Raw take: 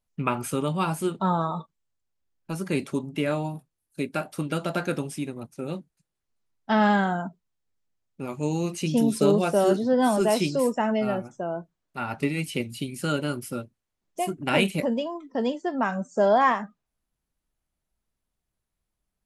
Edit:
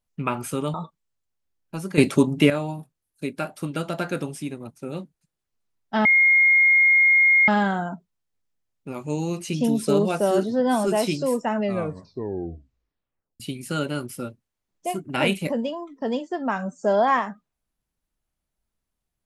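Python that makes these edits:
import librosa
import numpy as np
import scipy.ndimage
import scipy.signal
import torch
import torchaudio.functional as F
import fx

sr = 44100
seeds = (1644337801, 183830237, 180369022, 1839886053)

y = fx.edit(x, sr, fx.cut(start_s=0.74, length_s=0.76),
    fx.clip_gain(start_s=2.74, length_s=0.52, db=10.5),
    fx.insert_tone(at_s=6.81, length_s=1.43, hz=2140.0, db=-13.0),
    fx.tape_stop(start_s=10.88, length_s=1.85), tone=tone)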